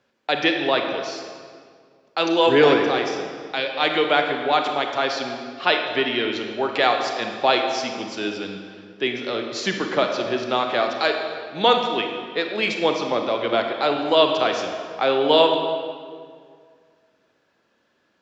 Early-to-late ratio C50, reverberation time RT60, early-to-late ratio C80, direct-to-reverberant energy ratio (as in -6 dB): 4.5 dB, 2.0 s, 6.0 dB, 3.5 dB